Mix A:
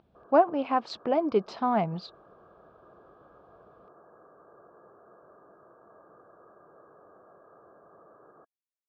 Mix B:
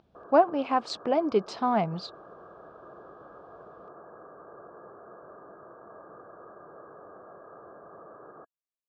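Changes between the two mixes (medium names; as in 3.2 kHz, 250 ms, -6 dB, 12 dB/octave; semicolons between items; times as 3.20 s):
background +7.0 dB; master: remove distance through air 120 m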